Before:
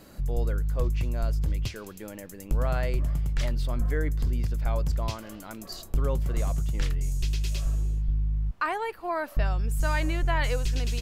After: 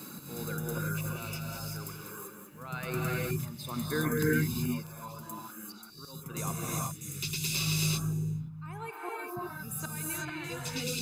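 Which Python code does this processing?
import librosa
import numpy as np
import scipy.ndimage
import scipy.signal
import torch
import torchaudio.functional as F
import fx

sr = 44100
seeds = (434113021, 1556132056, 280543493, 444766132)

y = fx.dereverb_blind(x, sr, rt60_s=2.0)
y = scipy.signal.sosfilt(scipy.signal.butter(4, 140.0, 'highpass', fs=sr, output='sos'), y)
y = fx.high_shelf(y, sr, hz=8400.0, db=11.5)
y = y + 0.67 * np.pad(y, (int(0.8 * sr / 1000.0), 0))[:len(y)]
y = fx.rider(y, sr, range_db=5, speed_s=0.5)
y = fx.auto_swell(y, sr, attack_ms=474.0)
y = fx.rev_gated(y, sr, seeds[0], gate_ms=410, shape='rising', drr_db=-4.0)
y = fx.echo_crushed(y, sr, ms=194, feedback_pct=35, bits=10, wet_db=-6.5, at=(0.86, 3.31))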